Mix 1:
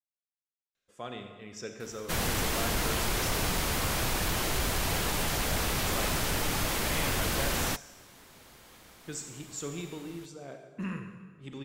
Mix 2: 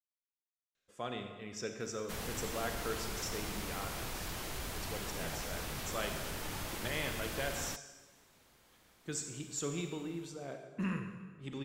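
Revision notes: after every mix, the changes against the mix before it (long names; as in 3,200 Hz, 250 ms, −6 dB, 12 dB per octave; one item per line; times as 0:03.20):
background −11.5 dB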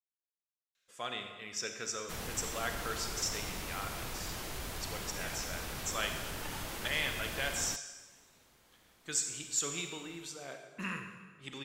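speech: add tilt shelving filter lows −8 dB, about 770 Hz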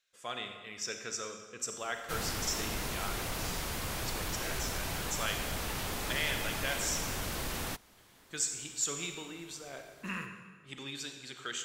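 speech: entry −0.75 s
background +4.5 dB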